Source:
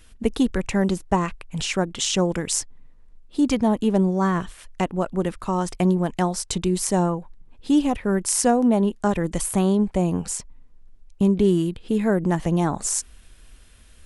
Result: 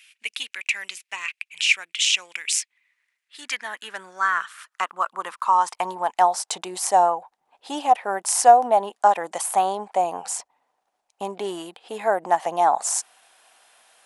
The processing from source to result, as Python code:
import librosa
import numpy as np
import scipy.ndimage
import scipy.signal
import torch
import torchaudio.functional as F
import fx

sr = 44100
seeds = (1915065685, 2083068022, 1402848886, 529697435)

y = fx.filter_sweep_highpass(x, sr, from_hz=2400.0, to_hz=760.0, start_s=2.55, end_s=6.41, q=4.7)